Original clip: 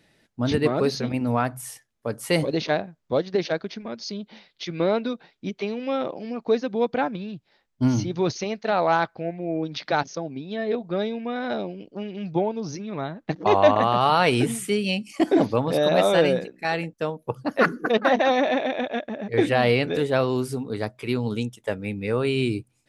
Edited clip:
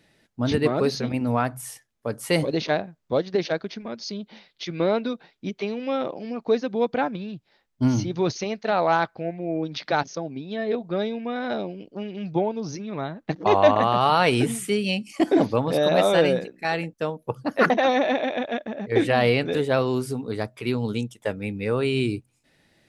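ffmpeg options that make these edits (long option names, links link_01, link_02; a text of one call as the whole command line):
ffmpeg -i in.wav -filter_complex "[0:a]asplit=2[link_01][link_02];[link_01]atrim=end=17.702[link_03];[link_02]atrim=start=18.118[link_04];[link_03][link_04]acrossfade=duration=0.004:curve1=hsin:curve2=hsin" out.wav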